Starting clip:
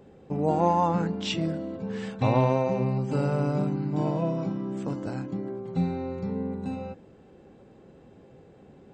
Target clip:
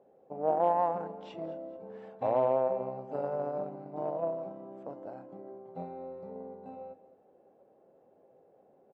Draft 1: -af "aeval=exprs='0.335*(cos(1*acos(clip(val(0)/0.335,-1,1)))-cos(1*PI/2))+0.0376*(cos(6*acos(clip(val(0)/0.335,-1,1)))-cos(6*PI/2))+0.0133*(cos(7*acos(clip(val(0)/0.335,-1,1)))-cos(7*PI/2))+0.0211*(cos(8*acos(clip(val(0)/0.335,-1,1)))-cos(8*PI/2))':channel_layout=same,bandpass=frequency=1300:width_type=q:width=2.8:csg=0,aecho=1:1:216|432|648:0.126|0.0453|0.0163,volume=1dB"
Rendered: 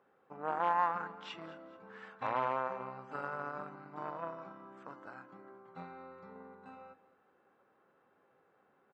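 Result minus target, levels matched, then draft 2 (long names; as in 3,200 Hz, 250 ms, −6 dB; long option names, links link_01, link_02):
500 Hz band −7.5 dB
-af "aeval=exprs='0.335*(cos(1*acos(clip(val(0)/0.335,-1,1)))-cos(1*PI/2))+0.0376*(cos(6*acos(clip(val(0)/0.335,-1,1)))-cos(6*PI/2))+0.0133*(cos(7*acos(clip(val(0)/0.335,-1,1)))-cos(7*PI/2))+0.0211*(cos(8*acos(clip(val(0)/0.335,-1,1)))-cos(8*PI/2))':channel_layout=same,bandpass=frequency=640:width_type=q:width=2.8:csg=0,aecho=1:1:216|432|648:0.126|0.0453|0.0163,volume=1dB"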